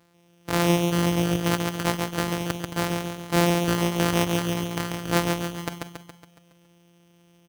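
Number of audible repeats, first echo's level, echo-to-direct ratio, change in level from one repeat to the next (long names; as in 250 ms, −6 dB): 6, −4.0 dB, −2.5 dB, −5.5 dB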